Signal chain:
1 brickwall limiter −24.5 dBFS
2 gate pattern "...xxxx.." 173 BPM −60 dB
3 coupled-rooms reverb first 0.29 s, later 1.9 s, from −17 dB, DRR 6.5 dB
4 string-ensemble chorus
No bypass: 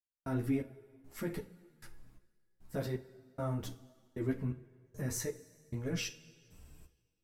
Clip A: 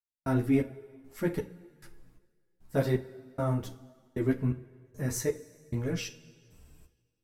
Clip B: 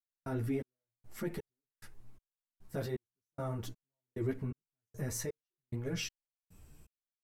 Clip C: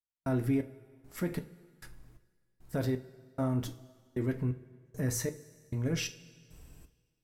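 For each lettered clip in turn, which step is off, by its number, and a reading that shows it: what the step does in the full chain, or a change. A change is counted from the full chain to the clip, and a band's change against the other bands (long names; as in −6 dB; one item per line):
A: 1, average gain reduction 3.0 dB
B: 3, change in momentary loudness spread −4 LU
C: 4, 125 Hz band +2.0 dB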